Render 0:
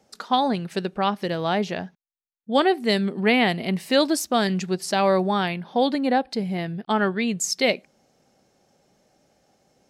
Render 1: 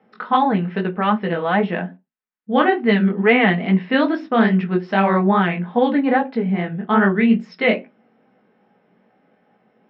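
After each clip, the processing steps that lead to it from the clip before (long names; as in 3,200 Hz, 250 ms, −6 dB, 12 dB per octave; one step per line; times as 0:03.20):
inverse Chebyshev low-pass filter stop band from 8,200 Hz, stop band 50 dB
chorus effect 2.4 Hz, delay 15.5 ms, depth 7.1 ms
convolution reverb RT60 0.25 s, pre-delay 3 ms, DRR 6.5 dB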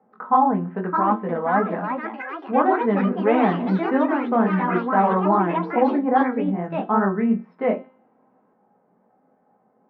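low-pass with resonance 980 Hz, resonance Q 1.9
tuned comb filter 260 Hz, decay 0.57 s, harmonics all, mix 60%
delay with pitch and tempo change per echo 680 ms, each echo +4 semitones, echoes 3, each echo −6 dB
level +2 dB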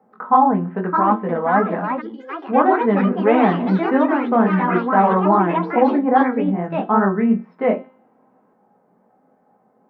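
gain on a spectral selection 0:02.01–0:02.29, 550–2,900 Hz −24 dB
level +3.5 dB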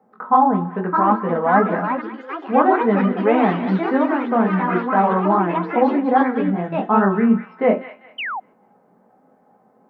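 speech leveller within 5 dB 2 s
delay with a high-pass on its return 198 ms, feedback 33%, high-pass 1,500 Hz, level −7.5 dB
sound drawn into the spectrogram fall, 0:08.18–0:08.40, 700–3,200 Hz −25 dBFS
level −1 dB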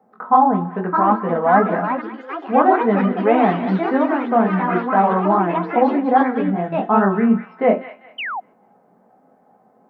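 parametric band 700 Hz +5.5 dB 0.21 octaves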